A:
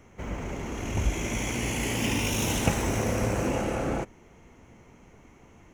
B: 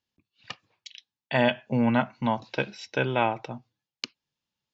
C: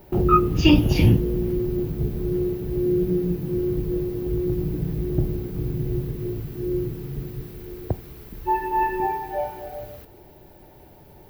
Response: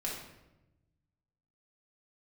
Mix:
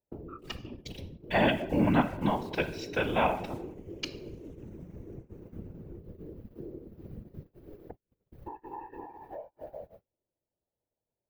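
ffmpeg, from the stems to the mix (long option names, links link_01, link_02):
-filter_complex "[0:a]equalizer=frequency=600:width_type=o:width=0.56:gain=-10,adelay=1950,volume=-16.5dB[link_01];[1:a]acrusher=bits=8:mix=0:aa=0.000001,volume=1.5dB,asplit=2[link_02][link_03];[link_03]volume=-9dB[link_04];[2:a]equalizer=frequency=530:width_type=o:width=0.26:gain=12.5,acompressor=threshold=-25dB:ratio=5,volume=0.5dB[link_05];[link_01][link_05]amix=inputs=2:normalize=0,highshelf=frequency=2500:gain=-12,acompressor=threshold=-33dB:ratio=12,volume=0dB[link_06];[3:a]atrim=start_sample=2205[link_07];[link_04][link_07]afir=irnorm=-1:irlink=0[link_08];[link_02][link_06][link_08]amix=inputs=3:normalize=0,agate=range=-39dB:threshold=-36dB:ratio=16:detection=peak,afftfilt=real='hypot(re,im)*cos(2*PI*random(0))':imag='hypot(re,im)*sin(2*PI*random(1))':win_size=512:overlap=0.75"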